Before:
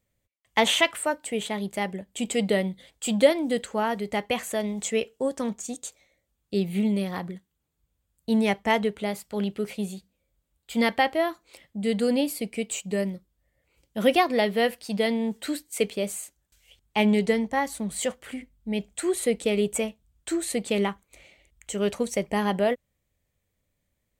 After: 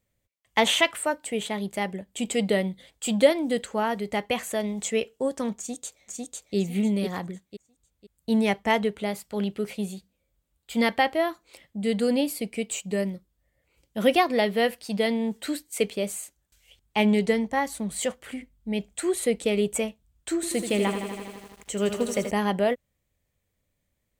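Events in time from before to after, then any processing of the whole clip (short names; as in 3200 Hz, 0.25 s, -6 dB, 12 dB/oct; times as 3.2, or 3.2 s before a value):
5.57–6.56 echo throw 0.5 s, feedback 30%, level -1.5 dB
20.35–22.31 lo-fi delay 81 ms, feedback 80%, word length 8-bit, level -8 dB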